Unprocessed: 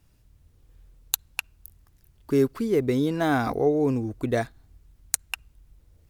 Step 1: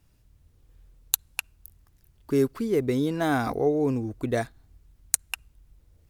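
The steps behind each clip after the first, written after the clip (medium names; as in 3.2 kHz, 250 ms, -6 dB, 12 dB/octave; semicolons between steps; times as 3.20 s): dynamic bell 9.6 kHz, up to +5 dB, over -48 dBFS, Q 1; trim -1.5 dB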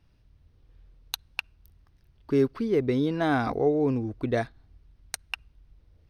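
Savitzky-Golay filter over 15 samples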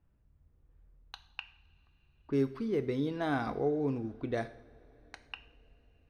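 level-controlled noise filter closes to 1.6 kHz, open at -23 dBFS; two-slope reverb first 0.57 s, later 4.7 s, from -21 dB, DRR 10 dB; trim -7.5 dB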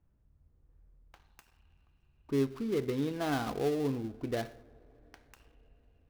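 dead-time distortion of 0.15 ms; tape noise reduction on one side only decoder only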